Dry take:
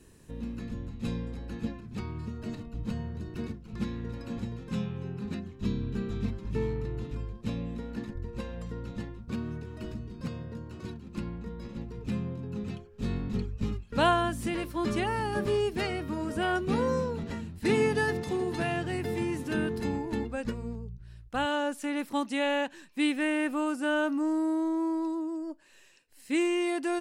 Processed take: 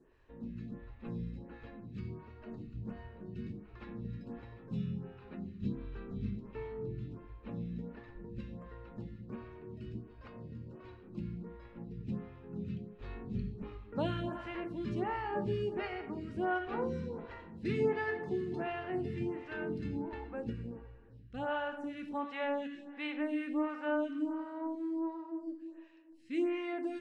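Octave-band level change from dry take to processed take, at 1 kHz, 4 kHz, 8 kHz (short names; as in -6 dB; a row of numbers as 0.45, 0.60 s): -7.5 dB, -13.0 dB, under -25 dB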